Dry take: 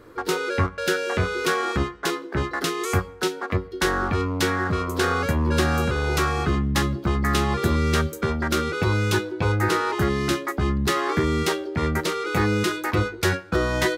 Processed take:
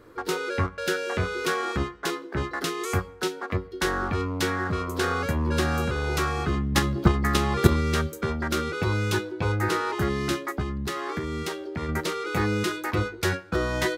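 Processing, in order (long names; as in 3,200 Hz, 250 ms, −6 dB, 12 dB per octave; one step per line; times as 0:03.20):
0:06.72–0:07.81: transient designer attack +12 dB, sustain +8 dB
0:10.61–0:11.89: downward compressor 3 to 1, threshold −25 dBFS, peak gain reduction 7 dB
level −3.5 dB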